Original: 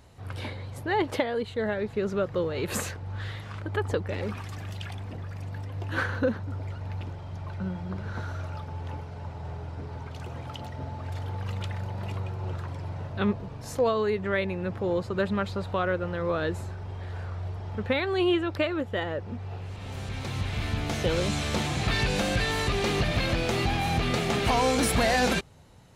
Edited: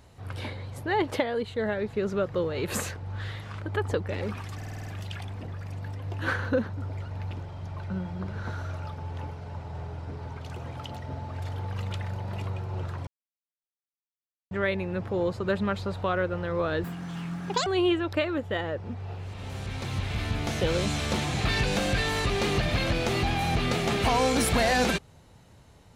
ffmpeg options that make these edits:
-filter_complex "[0:a]asplit=11[s0][s1][s2][s3][s4][s5][s6][s7][s8][s9][s10];[s0]atrim=end=4.612[s11];[s1]atrim=start=4.558:end=4.612[s12];[s2]atrim=start=4.558:end=4.612[s13];[s3]atrim=start=4.558:end=4.612[s14];[s4]atrim=start=4.558:end=4.612[s15];[s5]atrim=start=4.558:end=4.612[s16];[s6]atrim=start=4.558:end=12.77,asetpts=PTS-STARTPTS,afade=t=out:st=8.208:d=0.004:c=hsin[s17];[s7]atrim=start=12.77:end=14.21,asetpts=PTS-STARTPTS,volume=0[s18];[s8]atrim=start=14.21:end=16.544,asetpts=PTS-STARTPTS,afade=t=in:d=0.004:c=hsin[s19];[s9]atrim=start=16.54:end=18.09,asetpts=PTS-STARTPTS,asetrate=82908,aresample=44100,atrim=end_sample=36359,asetpts=PTS-STARTPTS[s20];[s10]atrim=start=18.086[s21];[s11][s12]acrossfade=d=0.004:c1=hsin:c2=hsin[s22];[s22][s13]acrossfade=d=0.004:c1=hsin:c2=hsin[s23];[s23][s14]acrossfade=d=0.004:c1=hsin:c2=hsin[s24];[s24][s15]acrossfade=d=0.004:c1=hsin:c2=hsin[s25];[s25][s16]acrossfade=d=0.004:c1=hsin:c2=hsin[s26];[s17][s18][s19]concat=n=3:v=0:a=1[s27];[s26][s27]acrossfade=d=0.004:c1=hsin:c2=hsin[s28];[s28][s20]acrossfade=d=0.004:c1=hsin:c2=hsin[s29];[s29][s21]acrossfade=d=0.004:c1=hsin:c2=hsin"

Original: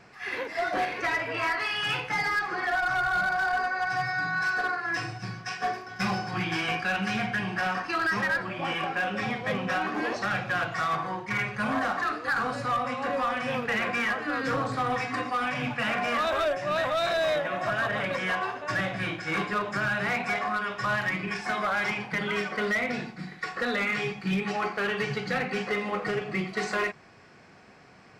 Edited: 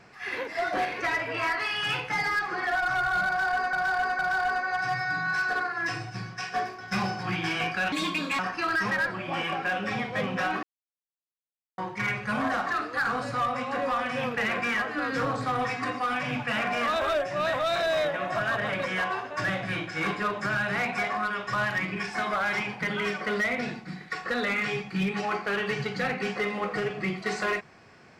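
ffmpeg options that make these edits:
-filter_complex "[0:a]asplit=7[s0][s1][s2][s3][s4][s5][s6];[s0]atrim=end=3.732[s7];[s1]atrim=start=3.268:end=3.732[s8];[s2]atrim=start=3.268:end=7.004[s9];[s3]atrim=start=7:end=7.7,asetpts=PTS-STARTPTS,asetrate=65709,aresample=44100,atrim=end_sample=20718,asetpts=PTS-STARTPTS[s10];[s4]atrim=start=7.696:end=9.94,asetpts=PTS-STARTPTS,afade=t=out:st=2.24:d=0.004:c=hsin[s11];[s5]atrim=start=9.94:end=11.09,asetpts=PTS-STARTPTS,volume=0[s12];[s6]atrim=start=11.09,asetpts=PTS-STARTPTS,afade=t=in:d=0.004:c=hsin[s13];[s7][s8]acrossfade=d=0.004:c1=hsin:c2=hsin[s14];[s14][s9]acrossfade=d=0.004:c1=hsin:c2=hsin[s15];[s15][s10]acrossfade=d=0.004:c1=hsin:c2=hsin[s16];[s11][s12][s13]concat=n=3:v=0:a=1[s17];[s16][s17]acrossfade=d=0.004:c1=hsin:c2=hsin"

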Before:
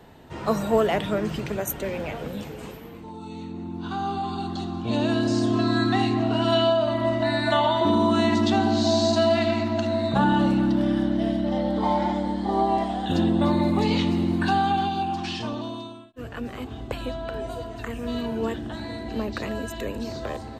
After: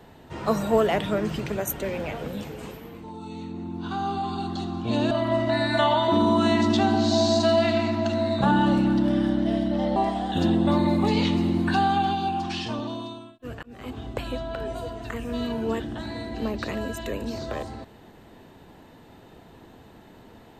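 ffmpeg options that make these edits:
-filter_complex "[0:a]asplit=4[s0][s1][s2][s3];[s0]atrim=end=5.112[s4];[s1]atrim=start=6.838:end=11.692[s5];[s2]atrim=start=12.698:end=16.37,asetpts=PTS-STARTPTS,afade=t=out:st=3.668:d=0.004:c=hsin[s6];[s3]atrim=start=16.37,asetpts=PTS-STARTPTS,afade=t=in:d=0.3[s7];[s4][s5]acrossfade=d=0.004:c1=hsin:c2=hsin[s8];[s6][s7]concat=n=2:v=0:a=1[s9];[s8][s9]acrossfade=d=0.004:c1=hsin:c2=hsin"

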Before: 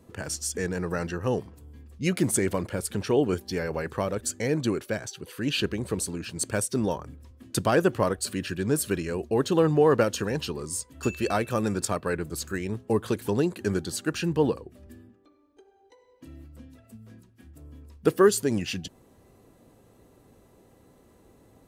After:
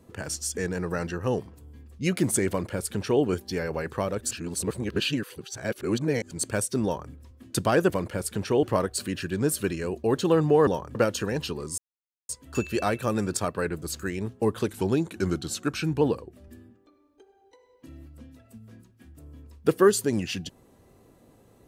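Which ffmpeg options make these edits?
-filter_complex "[0:a]asplit=10[s0][s1][s2][s3][s4][s5][s6][s7][s8][s9];[s0]atrim=end=4.312[s10];[s1]atrim=start=4.308:end=6.312,asetpts=PTS-STARTPTS,areverse[s11];[s2]atrim=start=6.308:end=7.902[s12];[s3]atrim=start=2.488:end=3.222[s13];[s4]atrim=start=7.898:end=9.942[s14];[s5]atrim=start=6.838:end=7.122[s15];[s6]atrim=start=9.938:end=10.77,asetpts=PTS-STARTPTS,afade=t=out:st=0.828:d=0.004:c=hsin,apad=pad_dur=0.51[s16];[s7]atrim=start=10.77:end=13.174,asetpts=PTS-STARTPTS,afade=t=in:d=0.004:c=hsin[s17];[s8]atrim=start=13.17:end=14.4,asetpts=PTS-STARTPTS,asetrate=41013,aresample=44100[s18];[s9]atrim=start=14.396[s19];[s10][s11]acrossfade=d=0.004:c1=hsin:c2=hsin[s20];[s20][s12]acrossfade=d=0.004:c1=hsin:c2=hsin[s21];[s21][s13]acrossfade=d=0.004:c1=hsin:c2=hsin[s22];[s22][s14]acrossfade=d=0.004:c1=hsin:c2=hsin[s23];[s23][s15]acrossfade=d=0.004:c1=hsin:c2=hsin[s24];[s16][s17]concat=n=2:v=0:a=1[s25];[s24][s25]acrossfade=d=0.004:c1=hsin:c2=hsin[s26];[s26][s18]acrossfade=d=0.004:c1=hsin:c2=hsin[s27];[s27][s19]acrossfade=d=0.004:c1=hsin:c2=hsin"

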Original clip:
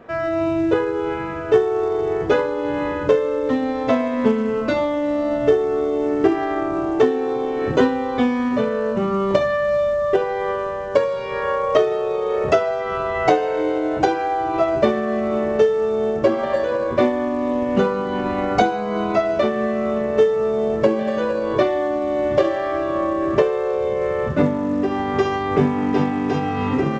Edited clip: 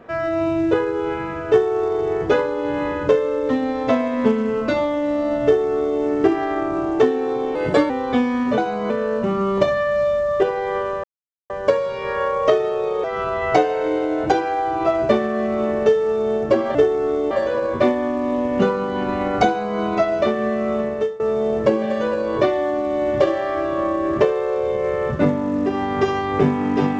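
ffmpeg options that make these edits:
-filter_complex "[0:a]asplit=10[s0][s1][s2][s3][s4][s5][s6][s7][s8][s9];[s0]atrim=end=7.554[s10];[s1]atrim=start=7.55:end=7.95,asetpts=PTS-STARTPTS,asetrate=50715,aresample=44100,atrim=end_sample=15339,asetpts=PTS-STARTPTS[s11];[s2]atrim=start=7.946:end=8.632[s12];[s3]atrim=start=18.638:end=18.962[s13];[s4]atrim=start=8.628:end=10.77,asetpts=PTS-STARTPTS,afade=t=out:st=2.138:d=0.004:c=hsin,apad=pad_dur=0.46[s14];[s5]atrim=start=10.77:end=12.312,asetpts=PTS-STARTPTS,afade=t=in:d=0.004:c=hsin[s15];[s6]atrim=start=12.768:end=16.482[s16];[s7]atrim=start=5.438:end=6.002[s17];[s8]atrim=start=16.478:end=20.37,asetpts=PTS-STARTPTS,afade=t=out:st=3.502:d=0.39:silence=0.105925[s18];[s9]atrim=start=20.37,asetpts=PTS-STARTPTS,afade=t=in:d=0.004:c=hsin:silence=0.105925[s19];[s10][s11]acrossfade=d=0.004:c1=hsin:c2=hsin[s20];[s20][s12]acrossfade=d=0.004:c1=hsin:c2=hsin[s21];[s21][s13]acrossfade=d=0.004:c1=hsin:c2=hsin[s22];[s14][s15]concat=n=2:v=0:a=1[s23];[s22][s23]acrossfade=d=0.004:c1=hsin:c2=hsin[s24];[s24][s16]acrossfade=d=0.004:c1=hsin:c2=hsin[s25];[s25][s17]acrossfade=d=0.004:c1=hsin:c2=hsin[s26];[s18][s19]concat=n=2:v=0:a=1[s27];[s26][s27]acrossfade=d=0.004:c1=hsin:c2=hsin"

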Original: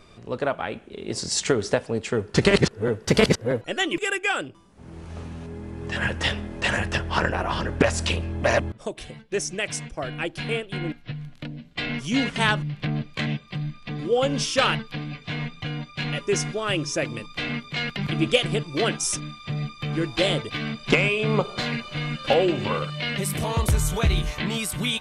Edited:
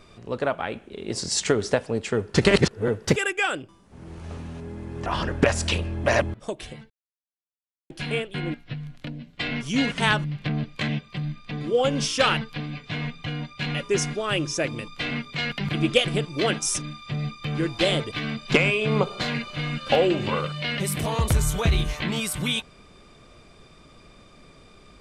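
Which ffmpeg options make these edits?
-filter_complex "[0:a]asplit=5[s0][s1][s2][s3][s4];[s0]atrim=end=3.162[s5];[s1]atrim=start=4.018:end=5.922[s6];[s2]atrim=start=7.438:end=9.28,asetpts=PTS-STARTPTS,afade=t=out:st=1.838:d=0.004:c=hsin[s7];[s3]atrim=start=9.28:end=10.28,asetpts=PTS-STARTPTS,volume=0[s8];[s4]atrim=start=10.28,asetpts=PTS-STARTPTS,afade=t=in:d=0.004:c=hsin[s9];[s5][s6]acrossfade=d=0.004:c1=hsin:c2=hsin[s10];[s7][s8][s9]concat=n=3:v=0:a=1[s11];[s10][s11]acrossfade=d=0.004:c1=hsin:c2=hsin"

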